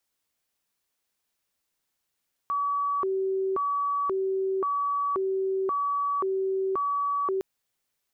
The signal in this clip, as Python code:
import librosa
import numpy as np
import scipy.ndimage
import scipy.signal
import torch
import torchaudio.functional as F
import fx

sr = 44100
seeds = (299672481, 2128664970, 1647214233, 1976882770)

y = fx.siren(sr, length_s=4.91, kind='hi-lo', low_hz=383.0, high_hz=1140.0, per_s=0.94, wave='sine', level_db=-24.0)